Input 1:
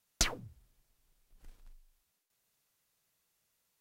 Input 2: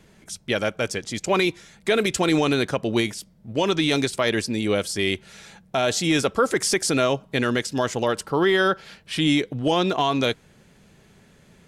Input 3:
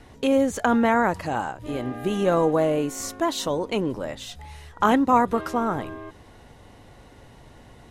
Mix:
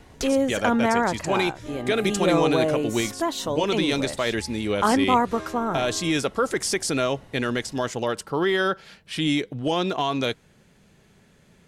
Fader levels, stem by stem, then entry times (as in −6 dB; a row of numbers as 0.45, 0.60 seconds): −4.0, −3.0, −1.5 decibels; 0.00, 0.00, 0.00 seconds